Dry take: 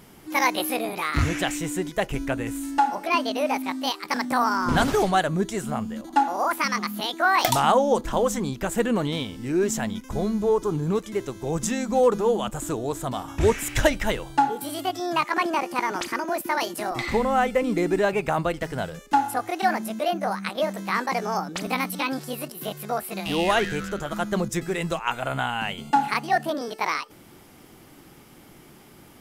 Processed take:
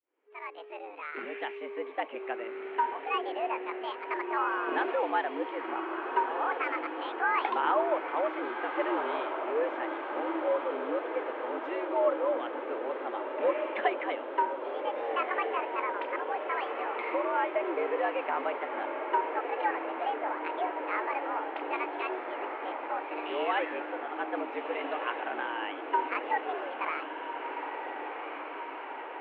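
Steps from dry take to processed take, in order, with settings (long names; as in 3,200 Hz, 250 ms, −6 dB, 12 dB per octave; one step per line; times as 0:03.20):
fade in at the beginning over 1.73 s
feedback delay with all-pass diffusion 1,525 ms, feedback 71%, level −6.5 dB
single-sideband voice off tune +110 Hz 200–2,700 Hz
level −8 dB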